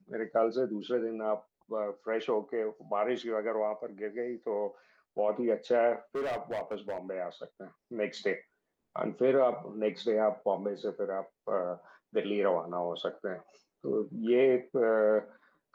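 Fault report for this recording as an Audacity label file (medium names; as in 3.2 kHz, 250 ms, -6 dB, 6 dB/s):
6.150000	6.980000	clipped -30 dBFS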